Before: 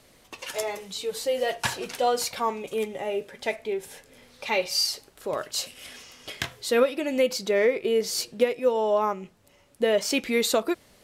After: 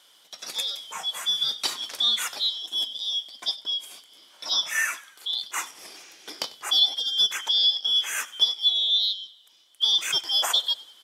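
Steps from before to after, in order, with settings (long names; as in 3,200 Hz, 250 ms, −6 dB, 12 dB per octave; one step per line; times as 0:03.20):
band-splitting scrambler in four parts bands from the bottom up 3412
high-pass filter 340 Hz 12 dB per octave
on a send: echo with shifted repeats 96 ms, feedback 50%, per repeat −60 Hz, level −20.5 dB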